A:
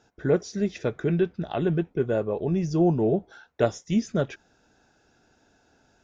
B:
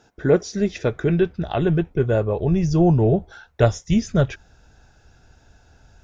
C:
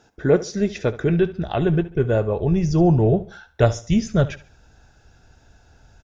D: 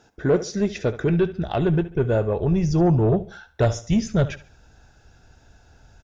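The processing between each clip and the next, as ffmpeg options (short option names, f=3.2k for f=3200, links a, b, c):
-af "asubboost=boost=9:cutoff=92,volume=6dB"
-af "aecho=1:1:71|142|213:0.141|0.0452|0.0145"
-af "asoftclip=type=tanh:threshold=-11dB"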